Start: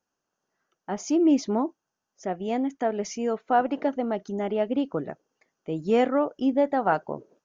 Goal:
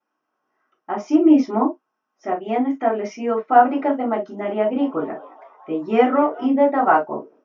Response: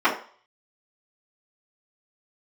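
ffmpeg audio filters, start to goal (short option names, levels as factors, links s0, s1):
-filter_complex "[0:a]asettb=1/sr,asplit=3[s0][s1][s2];[s0]atrim=end=4.204[s3];[s1]atrim=start=4.2:end=6.46,asetpts=PTS-STARTPTS,afade=t=in:d=0.004:c=qsin,afade=t=out:st=2.256:d=0.004:c=qsin,asplit=6[s4][s5][s6][s7][s8][s9];[s5]adelay=216,afreqshift=130,volume=0.0841[s10];[s6]adelay=432,afreqshift=260,volume=0.0507[s11];[s7]adelay=648,afreqshift=390,volume=0.0302[s12];[s8]adelay=864,afreqshift=520,volume=0.0182[s13];[s9]adelay=1080,afreqshift=650,volume=0.011[s14];[s4][s10][s11][s12][s13][s14]amix=inputs=6:normalize=0,atrim=end_sample=99666[s15];[s2]atrim=start=6.456[s16];[s3][s15]acrossfade=d=0.004:c1=hsin:c2=qsin[s17];[s17][s16]acrossfade=d=0.004:c1=qsin:c2=hsin[s18];[1:a]atrim=start_sample=2205,atrim=end_sample=3087[s19];[s18][s19]afir=irnorm=-1:irlink=0,volume=0.251"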